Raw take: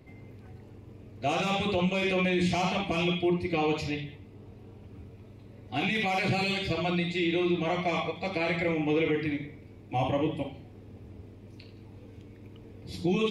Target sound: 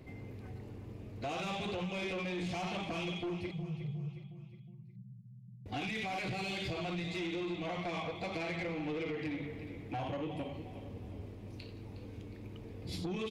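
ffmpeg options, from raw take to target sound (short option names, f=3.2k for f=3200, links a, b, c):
-filter_complex "[0:a]asettb=1/sr,asplit=3[a][b][c];[a]atrim=end=3.514[d];[b]atrim=start=3.51:end=5.66,asetpts=PTS-STARTPTS,afade=t=in:d=0.004:c=qsin,afade=t=out:st=2.146:d=0.004:c=qsin,asuperpass=centerf=150:order=20:qfactor=1.7[e];[c]atrim=start=5.656[f];[d][e]acrossfade=d=0.004:c1=hsin:c2=qsin[g];[g][f]acrossfade=d=0.004:c1=qsin:c2=hsin,acompressor=threshold=-34dB:ratio=6,aecho=1:1:362|724|1086|1448:0.224|0.101|0.0453|0.0204,asoftclip=type=tanh:threshold=-33.5dB,volume=1.5dB"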